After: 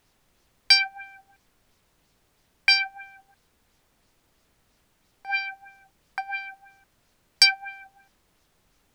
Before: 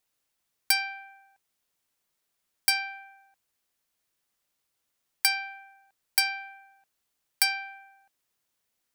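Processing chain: tilt shelf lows -5.5 dB, about 770 Hz; LFO low-pass sine 3 Hz 430–5900 Hz; added noise pink -67 dBFS

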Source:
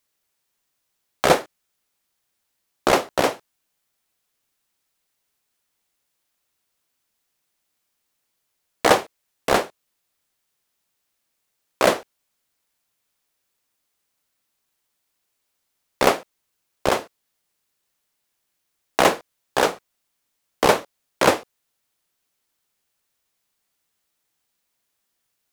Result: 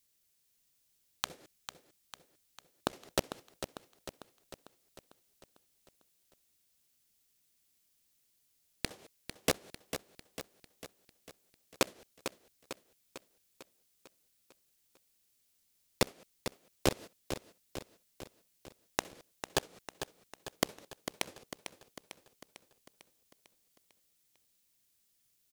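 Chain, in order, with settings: peaking EQ 970 Hz -13 dB 2.6 oct; inverted gate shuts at -13 dBFS, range -31 dB; on a send: feedback delay 449 ms, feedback 56%, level -9.5 dB; on the sum: trim +2 dB

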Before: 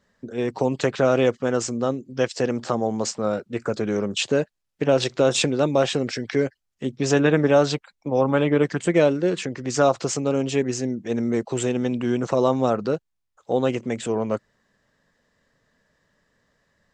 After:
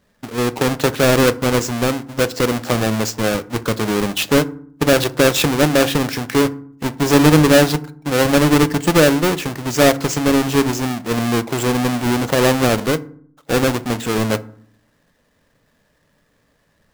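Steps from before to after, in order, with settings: square wave that keeps the level; FDN reverb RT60 0.55 s, low-frequency decay 1.5×, high-frequency decay 0.5×, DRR 13 dB; trim +1 dB

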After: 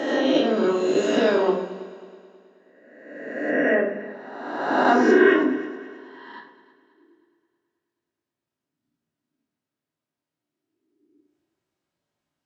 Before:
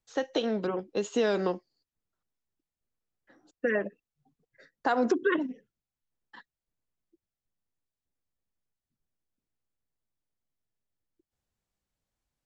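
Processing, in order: reverse spectral sustain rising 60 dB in 1.40 s; high-pass 180 Hz 12 dB/octave; treble shelf 6.2 kHz -11.5 dB; multi-head delay 107 ms, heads second and third, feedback 46%, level -19 dB; simulated room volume 780 m³, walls furnished, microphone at 2.8 m; trim +2 dB

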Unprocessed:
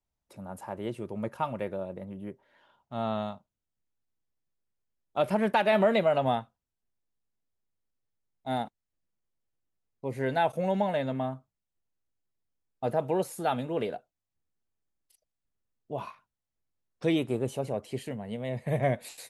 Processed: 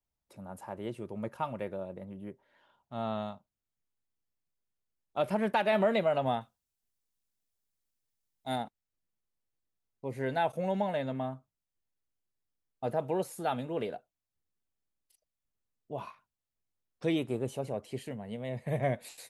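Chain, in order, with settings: 6.41–8.56 s: treble shelf 3.1 kHz +11 dB; trim -3.5 dB

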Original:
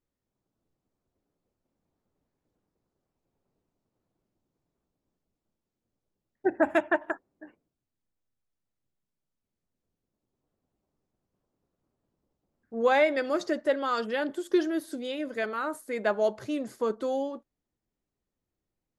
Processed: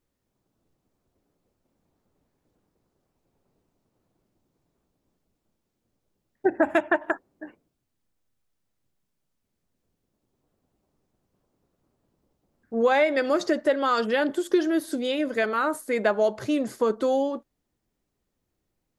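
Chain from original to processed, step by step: compression 2.5:1, threshold -27 dBFS, peak gain reduction 6.5 dB; trim +7.5 dB

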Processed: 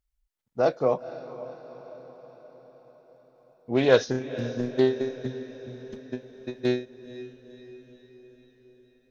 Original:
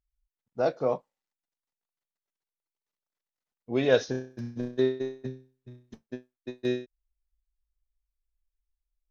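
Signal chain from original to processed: echo that smears into a reverb 492 ms, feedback 57%, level -14 dB; loudspeaker Doppler distortion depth 0.14 ms; trim +3.5 dB

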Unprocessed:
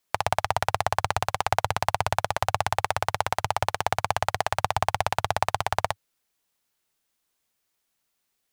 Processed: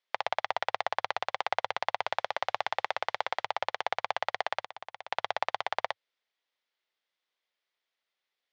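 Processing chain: 2.01–3.45 s: modulation noise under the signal 32 dB; 4.61–5.12 s: compression 4:1, threshold -36 dBFS, peak gain reduction 15.5 dB; cabinet simulation 400–5000 Hz, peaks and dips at 530 Hz +4 dB, 2 kHz +6 dB, 3.4 kHz +5 dB; trim -6.5 dB

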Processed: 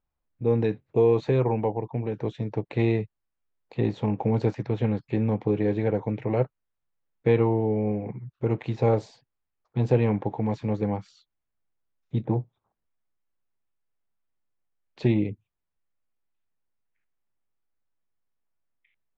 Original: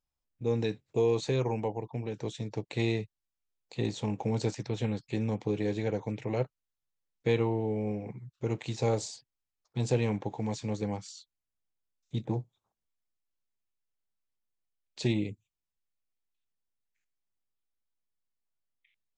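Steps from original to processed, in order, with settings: low-pass 1.9 kHz 12 dB/octave; trim +6.5 dB

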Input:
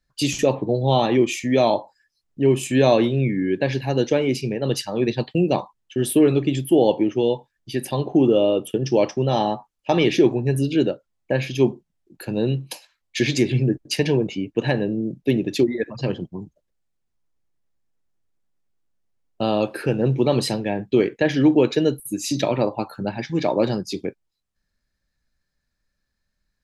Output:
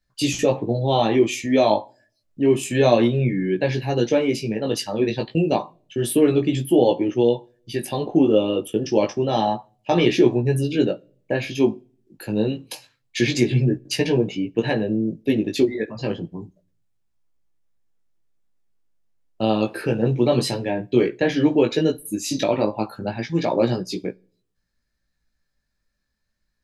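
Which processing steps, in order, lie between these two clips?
chorus 0.29 Hz, delay 16.5 ms, depth 2.4 ms; on a send: reverberation RT60 0.55 s, pre-delay 4 ms, DRR 23.5 dB; on the sum: trim +3 dB

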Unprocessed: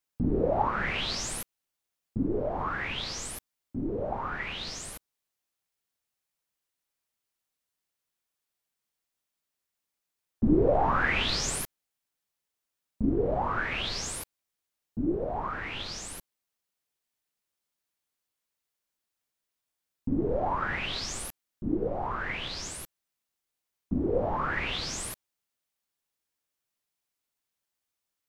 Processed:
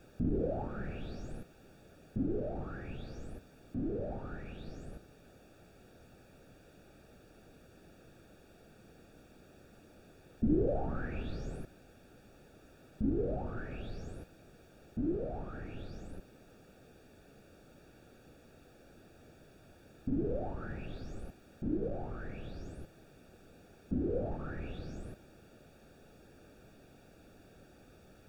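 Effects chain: jump at every zero crossing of -28.5 dBFS; boxcar filter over 43 samples; trim -6.5 dB

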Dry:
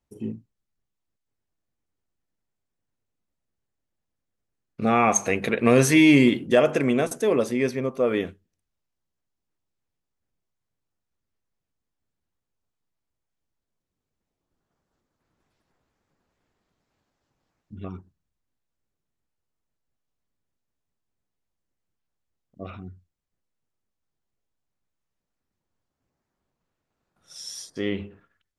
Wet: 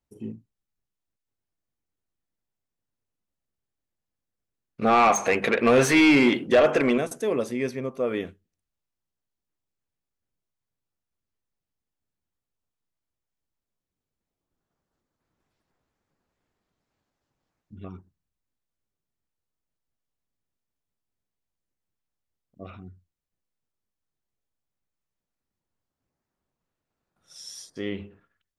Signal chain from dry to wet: 4.81–6.98 s: overdrive pedal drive 19 dB, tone 2.1 kHz, clips at -4 dBFS; trim -4 dB

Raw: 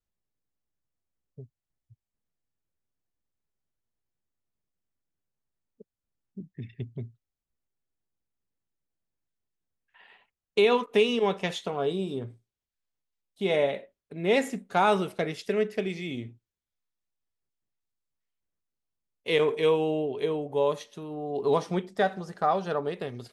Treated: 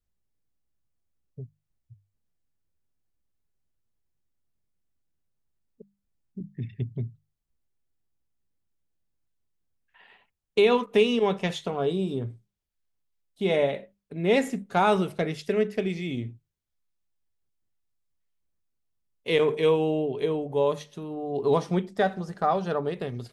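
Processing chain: bass shelf 200 Hz +9 dB; hum notches 50/100/150/200 Hz

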